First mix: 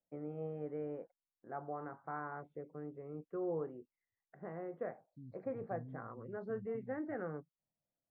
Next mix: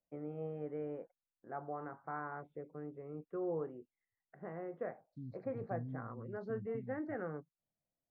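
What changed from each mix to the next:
second voice +5.5 dB; master: add treble shelf 5 kHz +10 dB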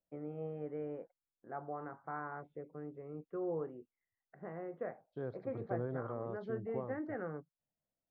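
second voice: remove Chebyshev band-stop 280–4200 Hz, order 5

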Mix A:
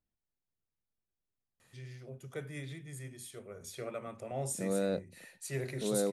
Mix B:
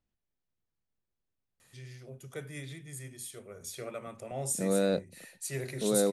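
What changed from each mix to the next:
second voice +4.5 dB; master: add treble shelf 4 kHz +7 dB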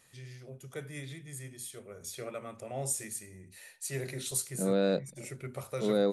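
first voice: entry -1.60 s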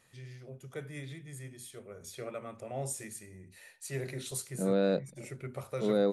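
master: add treble shelf 4 kHz -7 dB

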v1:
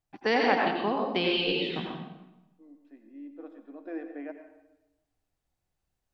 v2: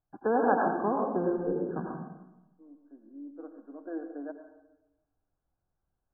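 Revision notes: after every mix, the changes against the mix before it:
master: add brick-wall FIR low-pass 1.7 kHz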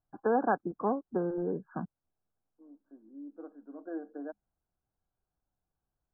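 first voice +3.5 dB; reverb: off

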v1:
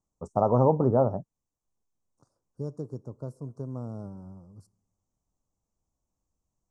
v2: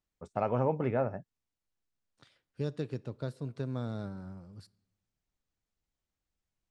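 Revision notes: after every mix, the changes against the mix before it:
first voice -8.5 dB; master: remove Chebyshev band-stop 1.1–6 kHz, order 3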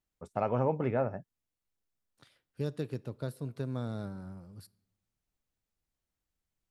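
master: remove low-pass 8.1 kHz 24 dB/octave

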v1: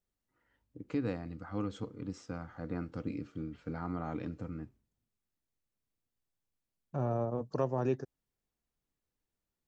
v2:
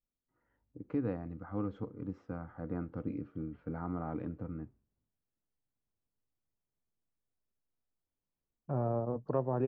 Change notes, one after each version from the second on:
second voice: entry +1.75 s; master: add low-pass 1.4 kHz 12 dB/octave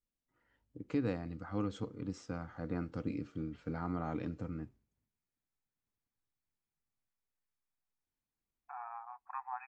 second voice: add brick-wall FIR band-pass 720–2600 Hz; master: remove low-pass 1.4 kHz 12 dB/octave

